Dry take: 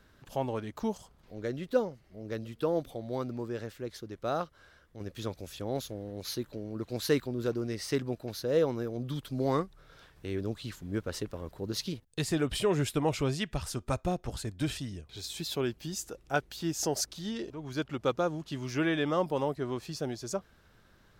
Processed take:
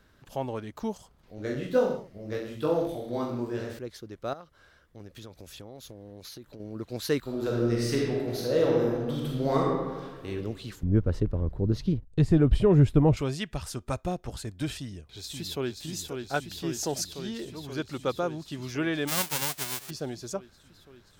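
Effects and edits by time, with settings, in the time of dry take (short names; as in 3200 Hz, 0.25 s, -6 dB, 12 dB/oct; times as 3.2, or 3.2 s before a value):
1.36–3.79 reverse bouncing-ball echo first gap 20 ms, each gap 1.1×, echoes 7, each echo -2 dB
4.33–6.6 compressor 10:1, threshold -40 dBFS
7.2–10.28 reverb throw, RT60 1.5 s, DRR -3.5 dB
10.83–13.17 tilt -4.5 dB/oct
14.77–15.81 echo throw 0.53 s, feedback 80%, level -5 dB
19.07–19.89 spectral whitening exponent 0.1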